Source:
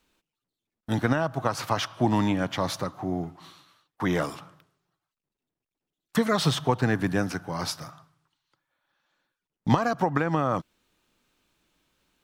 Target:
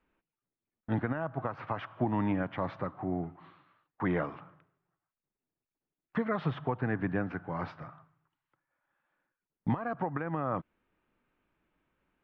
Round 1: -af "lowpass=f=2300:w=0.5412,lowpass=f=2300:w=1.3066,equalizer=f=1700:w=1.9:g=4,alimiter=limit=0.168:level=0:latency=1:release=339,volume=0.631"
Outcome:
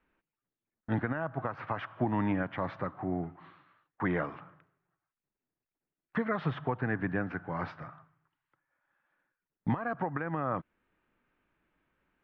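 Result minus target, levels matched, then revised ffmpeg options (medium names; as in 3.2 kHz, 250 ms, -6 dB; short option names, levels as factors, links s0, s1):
2 kHz band +2.5 dB
-af "lowpass=f=2300:w=0.5412,lowpass=f=2300:w=1.3066,alimiter=limit=0.168:level=0:latency=1:release=339,volume=0.631"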